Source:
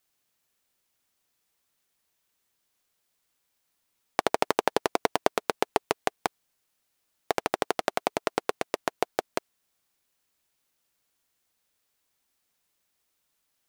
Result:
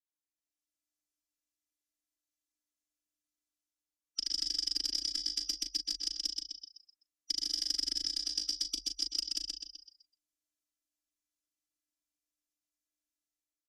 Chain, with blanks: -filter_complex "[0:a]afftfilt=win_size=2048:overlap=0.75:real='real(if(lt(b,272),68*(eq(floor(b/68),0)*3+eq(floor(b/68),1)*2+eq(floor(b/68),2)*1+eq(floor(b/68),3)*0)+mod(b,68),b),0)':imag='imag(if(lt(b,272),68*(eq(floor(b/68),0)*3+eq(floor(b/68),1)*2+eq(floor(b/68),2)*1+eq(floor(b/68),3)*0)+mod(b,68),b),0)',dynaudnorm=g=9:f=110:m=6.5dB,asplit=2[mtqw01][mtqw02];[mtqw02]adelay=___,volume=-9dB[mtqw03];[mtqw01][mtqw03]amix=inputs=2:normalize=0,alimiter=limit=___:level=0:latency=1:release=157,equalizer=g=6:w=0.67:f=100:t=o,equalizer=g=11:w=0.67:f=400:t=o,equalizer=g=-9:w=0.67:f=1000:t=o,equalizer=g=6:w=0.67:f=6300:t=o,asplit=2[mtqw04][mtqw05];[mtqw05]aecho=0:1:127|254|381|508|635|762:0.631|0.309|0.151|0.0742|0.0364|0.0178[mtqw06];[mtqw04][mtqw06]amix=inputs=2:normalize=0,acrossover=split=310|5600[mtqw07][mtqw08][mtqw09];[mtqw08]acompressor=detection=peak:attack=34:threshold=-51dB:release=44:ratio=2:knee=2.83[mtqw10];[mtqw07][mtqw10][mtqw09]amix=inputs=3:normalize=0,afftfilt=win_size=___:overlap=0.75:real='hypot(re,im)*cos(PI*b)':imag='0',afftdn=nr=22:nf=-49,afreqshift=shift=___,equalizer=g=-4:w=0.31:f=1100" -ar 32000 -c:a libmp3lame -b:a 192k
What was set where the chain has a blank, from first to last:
38, -9dB, 512, -45